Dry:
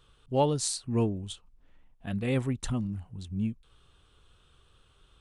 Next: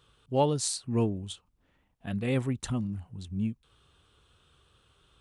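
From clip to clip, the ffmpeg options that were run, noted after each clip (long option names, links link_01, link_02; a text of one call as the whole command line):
ffmpeg -i in.wav -af "highpass=59" out.wav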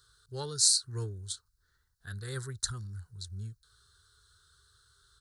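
ffmpeg -i in.wav -af "firequalizer=gain_entry='entry(100,0);entry(240,-25);entry(400,-5);entry(620,-22);entry(1500,9);entry(2500,-23);entry(4100,13);entry(6000,10)':delay=0.05:min_phase=1,volume=-2.5dB" out.wav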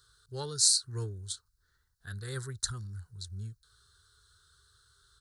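ffmpeg -i in.wav -af anull out.wav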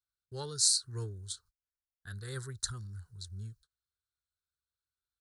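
ffmpeg -i in.wav -af "agate=range=-30dB:threshold=-56dB:ratio=16:detection=peak,volume=-2.5dB" out.wav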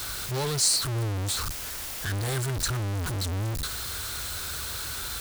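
ffmpeg -i in.wav -af "aeval=exprs='val(0)+0.5*0.0631*sgn(val(0))':channel_layout=same" out.wav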